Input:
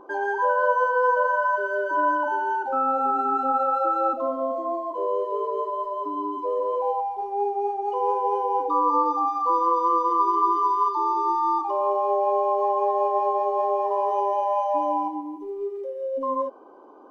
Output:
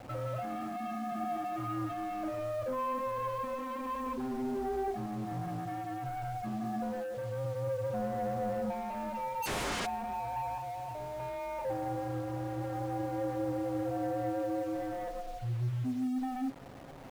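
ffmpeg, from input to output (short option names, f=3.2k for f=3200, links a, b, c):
-filter_complex "[0:a]asettb=1/sr,asplit=3[a][b][c];[a]atrim=end=4.064[d];[b]atrim=start=4.06:end=4.88,asetpts=PTS-STARTPTS,afade=t=in:d=0.004:c=qsin,afade=t=out:st=0.816:d=0.004:c=qsin,aemphasis=mode=reproduction:type=bsi[e];[c]atrim=start=4.876[f];[d][e]acrossfade=d=0.004:c1=hsin:c2=qsin[g];[g][f]acrossfade=d=0.004:c1=qsin:c2=hsin,highpass=f=370:t=q:w=0.5412,highpass=f=370:t=q:w=1.307,lowpass=f=3.2k:t=q:w=0.5176,lowpass=f=3.2k:t=q:w=0.7071,lowpass=f=3.2k:t=q:w=1.932,afreqshift=-280,asplit=2[h][i];[i]acompressor=threshold=-35dB:ratio=6,volume=-2.5dB[j];[h][j]amix=inputs=2:normalize=0,alimiter=limit=-20.5dB:level=0:latency=1:release=16,asoftclip=type=tanh:threshold=-27.5dB,asettb=1/sr,asplit=3[k][l][m];[k]atrim=end=10.584[n];[l]atrim=start=10.58:end=11.2,asetpts=PTS-STARTPTS,afade=t=in:d=0.004:c=qsin,afade=t=out:st=0.616:d=0.004:c=qsin,adynamicsmooth=sensitivity=1:basefreq=630[o];[m]atrim=start=11.196[p];[n][o]acrossfade=d=0.004:c1=hsin:c2=qsin[q];[q][p]acrossfade=d=0.004:c1=qsin:c2=hsin,flanger=delay=7.3:depth=2.3:regen=55:speed=0.18:shape=sinusoidal,asplit=3[r][s][t];[r]afade=t=out:st=9.42:d=0.02[u];[s]aeval=exprs='0.0398*sin(PI/2*7.08*val(0)/0.0398)':c=same,afade=t=in:st=9.42:d=0.02,afade=t=out:st=9.85:d=0.02[v];[t]afade=t=in:st=9.85:d=0.02[w];[u][v][w]amix=inputs=3:normalize=0,acrusher=bits=7:mix=0:aa=0.000001,highshelf=f=2.1k:g=-8.5"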